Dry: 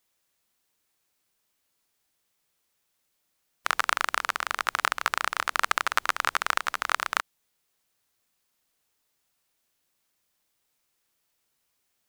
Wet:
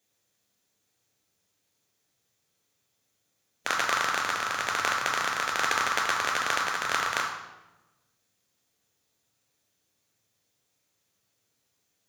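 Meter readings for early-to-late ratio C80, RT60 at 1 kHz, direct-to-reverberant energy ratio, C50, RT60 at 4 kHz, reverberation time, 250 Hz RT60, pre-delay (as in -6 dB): 7.0 dB, 0.95 s, 1.0 dB, 5.0 dB, 0.80 s, 1.1 s, 1.4 s, 3 ms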